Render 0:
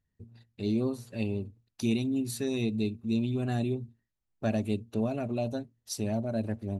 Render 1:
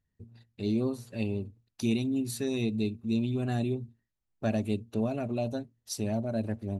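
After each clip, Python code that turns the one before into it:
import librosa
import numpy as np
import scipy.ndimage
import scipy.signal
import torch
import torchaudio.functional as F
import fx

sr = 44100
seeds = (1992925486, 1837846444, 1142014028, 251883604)

y = x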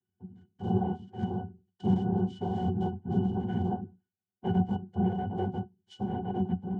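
y = fx.noise_vocoder(x, sr, seeds[0], bands=4)
y = fx.octave_resonator(y, sr, note='F#', decay_s=0.11)
y = F.gain(torch.from_numpy(y), 8.5).numpy()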